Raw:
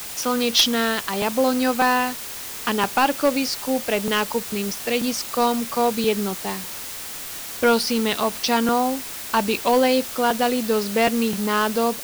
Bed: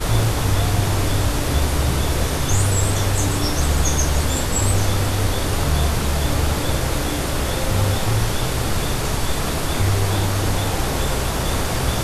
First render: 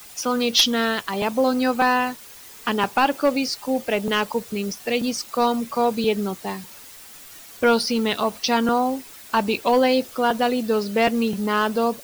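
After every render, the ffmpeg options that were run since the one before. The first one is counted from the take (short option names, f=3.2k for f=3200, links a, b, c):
-af "afftdn=nr=11:nf=-33"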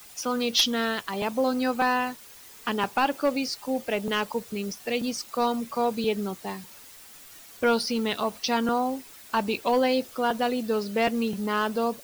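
-af "volume=-5dB"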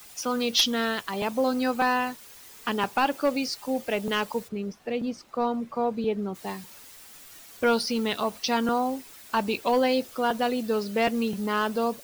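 -filter_complex "[0:a]asplit=3[a][b][c];[a]afade=t=out:st=4.47:d=0.02[d];[b]lowpass=f=1.1k:p=1,afade=t=in:st=4.47:d=0.02,afade=t=out:st=6.34:d=0.02[e];[c]afade=t=in:st=6.34:d=0.02[f];[d][e][f]amix=inputs=3:normalize=0"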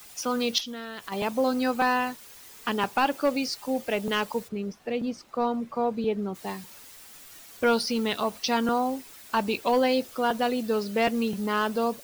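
-filter_complex "[0:a]asettb=1/sr,asplit=3[a][b][c];[a]atrim=end=0.584[d];[b]atrim=start=0.58:end=1.12,asetpts=PTS-STARTPTS,afade=t=in:d=0.004:c=qsin,afade=t=out:st=0.536:d=0.004:c=qsin,acompressor=threshold=-32dB:ratio=16:attack=3.2:release=140:knee=1:detection=peak[e];[c]atrim=start=1.116[f];[d][e]acrossfade=d=0.004:c1=hsin:c2=qsin[g];[g][f]acrossfade=d=0.004:c1=qsin:c2=hsin"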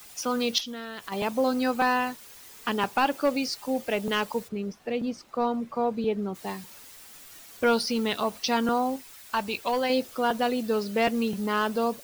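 -filter_complex "[0:a]asettb=1/sr,asplit=3[a][b][c];[a]atrim=end=8.964[d];[b]atrim=start=8.96:end=9.9,asetpts=PTS-STARTPTS,afade=t=in:d=0.004:c=qsin,afade=t=out:st=0.936:d=0.004:c=qsin,equalizer=f=300:w=0.63:g=-7[e];[c]atrim=start=9.896[f];[d][e]acrossfade=d=0.004:c1=hsin:c2=qsin[g];[g][f]acrossfade=d=0.004:c1=qsin:c2=hsin"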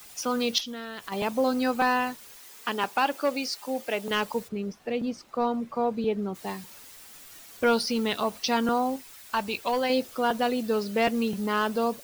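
-filter_complex "[0:a]asettb=1/sr,asplit=3[a][b][c];[a]atrim=end=2.364[d];[b]atrim=start=2.36:end=4.11,asetpts=PTS-STARTPTS,afade=t=in:d=0.004:c=qsin,afade=t=out:st=1.746:d=0.004:c=qsin,highpass=f=350:p=1[e];[c]atrim=start=4.106[f];[d][e]acrossfade=d=0.004:c1=hsin:c2=qsin[g];[g][f]acrossfade=d=0.004:c1=qsin:c2=hsin"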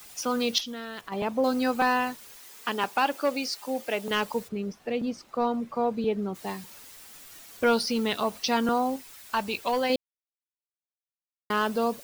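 -filter_complex "[0:a]asettb=1/sr,asplit=3[a][b][c];[a]atrim=end=1.014[d];[b]atrim=start=1.01:end=1.44,asetpts=PTS-STARTPTS,afade=t=in:d=0.004:c=qsin,afade=t=out:st=0.426:d=0.004:c=qsin,highshelf=f=3.2k:g=-11[e];[c]atrim=start=1.436[f];[d][e]acrossfade=d=0.004:c1=hsin:c2=qsin[g];[g][f]acrossfade=d=0.004:c1=qsin:c2=hsin,asplit=3[h][i][j];[h]atrim=end=9.96,asetpts=PTS-STARTPTS,afade=t=out:st=9.956:d=0.004:c=hsin[k];[i]atrim=start=9.96:end=11.5,asetpts=PTS-STARTPTS,volume=0[l];[j]atrim=start=11.5,asetpts=PTS-STARTPTS,afade=t=in:d=0.004:c=hsin[m];[k][l][m]concat=n=3:v=0:a=1"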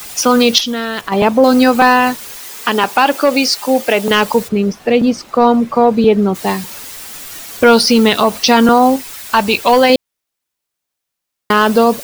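-af "acontrast=69,alimiter=level_in=11dB:limit=-1dB:release=50:level=0:latency=1"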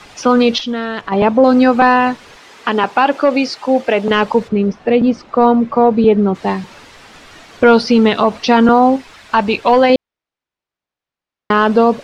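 -af "lowpass=5.2k,highshelf=f=3.4k:g=-11.5"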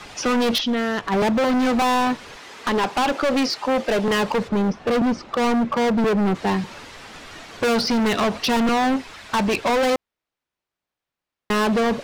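-af "asoftclip=type=hard:threshold=-17.5dB"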